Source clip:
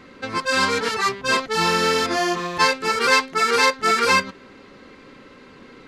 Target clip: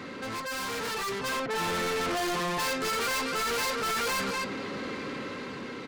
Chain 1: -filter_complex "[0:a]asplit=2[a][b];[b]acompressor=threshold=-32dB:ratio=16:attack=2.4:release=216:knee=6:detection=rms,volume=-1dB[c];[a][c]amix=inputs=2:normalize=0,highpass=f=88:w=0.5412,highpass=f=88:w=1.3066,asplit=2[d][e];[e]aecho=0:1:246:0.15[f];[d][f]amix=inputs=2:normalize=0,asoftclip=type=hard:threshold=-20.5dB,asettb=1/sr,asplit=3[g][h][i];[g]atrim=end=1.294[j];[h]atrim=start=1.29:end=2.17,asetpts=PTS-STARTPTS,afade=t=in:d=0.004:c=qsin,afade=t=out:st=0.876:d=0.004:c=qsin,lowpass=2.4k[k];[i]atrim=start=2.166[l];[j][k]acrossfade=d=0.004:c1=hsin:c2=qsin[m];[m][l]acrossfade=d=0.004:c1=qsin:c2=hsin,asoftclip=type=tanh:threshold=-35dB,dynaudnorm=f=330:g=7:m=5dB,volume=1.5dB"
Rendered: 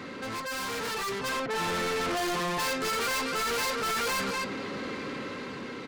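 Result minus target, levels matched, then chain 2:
hard clip: distortion +15 dB
-filter_complex "[0:a]asplit=2[a][b];[b]acompressor=threshold=-32dB:ratio=16:attack=2.4:release=216:knee=6:detection=rms,volume=-1dB[c];[a][c]amix=inputs=2:normalize=0,highpass=f=88:w=0.5412,highpass=f=88:w=1.3066,asplit=2[d][e];[e]aecho=0:1:246:0.15[f];[d][f]amix=inputs=2:normalize=0,asoftclip=type=hard:threshold=-10dB,asettb=1/sr,asplit=3[g][h][i];[g]atrim=end=1.294[j];[h]atrim=start=1.29:end=2.17,asetpts=PTS-STARTPTS,afade=t=in:d=0.004:c=qsin,afade=t=out:st=0.876:d=0.004:c=qsin,lowpass=2.4k[k];[i]atrim=start=2.166[l];[j][k]acrossfade=d=0.004:c1=hsin:c2=qsin[m];[m][l]acrossfade=d=0.004:c1=qsin:c2=hsin,asoftclip=type=tanh:threshold=-35dB,dynaudnorm=f=330:g=7:m=5dB,volume=1.5dB"

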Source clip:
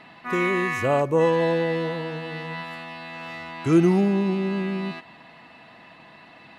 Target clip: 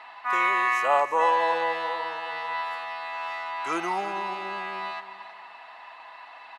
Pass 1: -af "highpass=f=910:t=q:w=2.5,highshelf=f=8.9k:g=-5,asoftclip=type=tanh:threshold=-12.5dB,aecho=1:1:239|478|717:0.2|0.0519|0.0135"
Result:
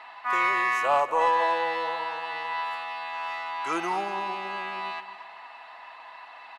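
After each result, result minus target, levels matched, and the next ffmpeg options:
soft clip: distortion +16 dB; echo 87 ms early
-af "highpass=f=910:t=q:w=2.5,highshelf=f=8.9k:g=-5,asoftclip=type=tanh:threshold=-3.5dB,aecho=1:1:239|478|717:0.2|0.0519|0.0135"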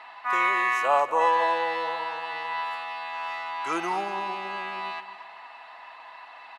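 echo 87 ms early
-af "highpass=f=910:t=q:w=2.5,highshelf=f=8.9k:g=-5,asoftclip=type=tanh:threshold=-3.5dB,aecho=1:1:326|652|978:0.2|0.0519|0.0135"

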